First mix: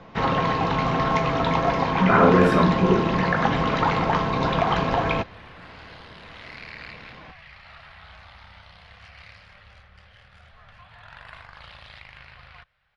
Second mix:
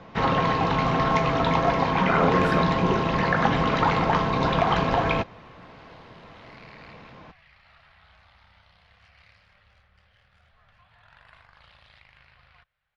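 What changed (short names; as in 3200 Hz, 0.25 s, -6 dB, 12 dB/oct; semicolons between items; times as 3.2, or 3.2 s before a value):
speech: send -8.5 dB; second sound -10.0 dB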